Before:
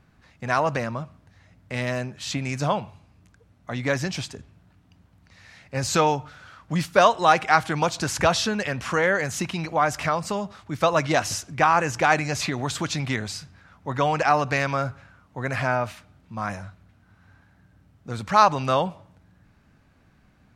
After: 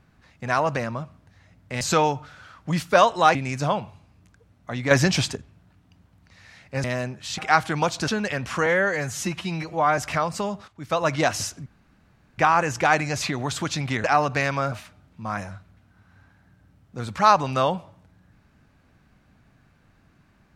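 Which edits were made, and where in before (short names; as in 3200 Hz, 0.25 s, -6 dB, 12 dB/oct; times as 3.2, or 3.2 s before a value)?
1.81–2.35 swap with 5.84–7.38
3.91–4.36 gain +8 dB
8.08–8.43 cut
9.01–9.89 stretch 1.5×
10.59–11.05 fade in, from -13.5 dB
11.57 insert room tone 0.72 s
13.23–14.2 cut
14.88–15.84 cut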